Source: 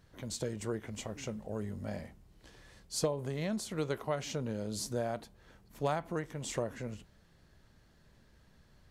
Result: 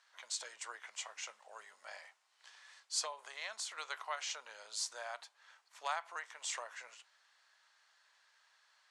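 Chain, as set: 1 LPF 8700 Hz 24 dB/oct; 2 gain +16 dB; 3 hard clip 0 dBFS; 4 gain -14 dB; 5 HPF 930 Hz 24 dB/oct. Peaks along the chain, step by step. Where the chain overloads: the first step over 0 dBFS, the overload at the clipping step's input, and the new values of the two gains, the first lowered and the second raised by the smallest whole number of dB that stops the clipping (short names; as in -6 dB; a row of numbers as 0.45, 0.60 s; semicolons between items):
-20.0, -4.0, -4.0, -18.0, -22.5 dBFS; no overload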